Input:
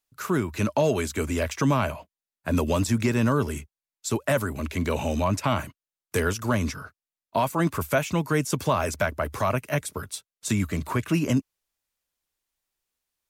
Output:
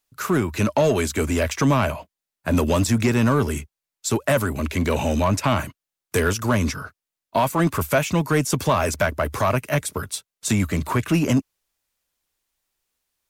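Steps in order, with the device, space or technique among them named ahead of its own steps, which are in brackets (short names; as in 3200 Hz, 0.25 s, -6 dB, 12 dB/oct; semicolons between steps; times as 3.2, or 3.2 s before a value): parallel distortion (in parallel at -4 dB: hard clip -25 dBFS, distortion -7 dB); on the sum: gain +1.5 dB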